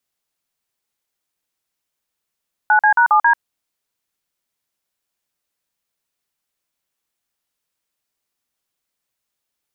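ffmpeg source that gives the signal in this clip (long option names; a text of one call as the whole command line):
ffmpeg -f lavfi -i "aevalsrc='0.251*clip(min(mod(t,0.136),0.091-mod(t,0.136))/0.002,0,1)*(eq(floor(t/0.136),0)*(sin(2*PI*852*mod(t,0.136))+sin(2*PI*1477*mod(t,0.136)))+eq(floor(t/0.136),1)*(sin(2*PI*852*mod(t,0.136))+sin(2*PI*1633*mod(t,0.136)))+eq(floor(t/0.136),2)*(sin(2*PI*941*mod(t,0.136))+sin(2*PI*1477*mod(t,0.136)))+eq(floor(t/0.136),3)*(sin(2*PI*852*mod(t,0.136))+sin(2*PI*1209*mod(t,0.136)))+eq(floor(t/0.136),4)*(sin(2*PI*941*mod(t,0.136))+sin(2*PI*1633*mod(t,0.136))))':duration=0.68:sample_rate=44100" out.wav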